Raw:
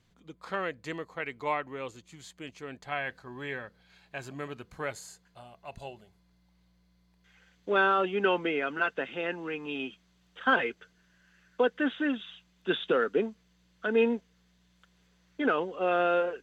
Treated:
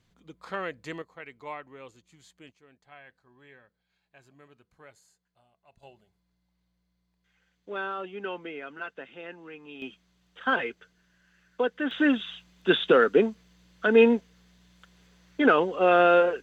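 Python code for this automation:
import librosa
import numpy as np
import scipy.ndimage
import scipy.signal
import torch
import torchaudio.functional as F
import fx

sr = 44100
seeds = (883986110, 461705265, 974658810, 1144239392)

y = fx.gain(x, sr, db=fx.steps((0.0, -0.5), (1.02, -8.0), (2.52, -17.0), (5.83, -9.0), (9.82, -1.0), (11.91, 7.0)))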